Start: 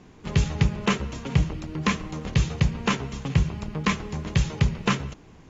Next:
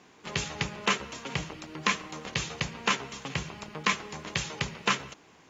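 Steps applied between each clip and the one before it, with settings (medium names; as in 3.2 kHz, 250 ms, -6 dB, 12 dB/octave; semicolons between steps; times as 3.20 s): high-pass 840 Hz 6 dB/octave; trim +1.5 dB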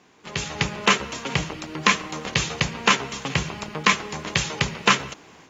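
level rider gain up to 11.5 dB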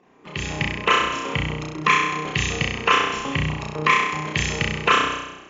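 resonances exaggerated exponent 2; on a send: flutter echo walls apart 5.6 m, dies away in 0.96 s; on the sum: trim -2 dB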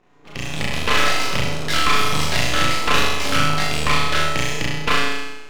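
ever faster or slower copies 254 ms, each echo +4 st, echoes 3; half-wave rectifier; flutter echo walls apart 6.8 m, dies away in 0.7 s; trim +1 dB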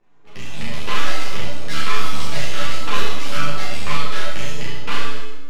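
on a send at -6 dB: reverberation RT60 0.95 s, pre-delay 5 ms; on the sum: three-phase chorus; trim -4 dB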